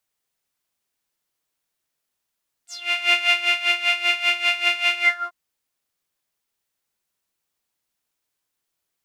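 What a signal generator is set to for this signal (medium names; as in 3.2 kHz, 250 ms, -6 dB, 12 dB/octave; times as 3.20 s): synth patch with tremolo F5, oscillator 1 saw, oscillator 2 saw, interval -12 st, oscillator 2 level -13 dB, noise -14.5 dB, filter bandpass, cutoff 1.1 kHz, Q 9.2, filter envelope 3 oct, filter decay 0.16 s, attack 488 ms, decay 0.36 s, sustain -3 dB, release 0.30 s, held 2.34 s, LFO 5.1 Hz, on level 14.5 dB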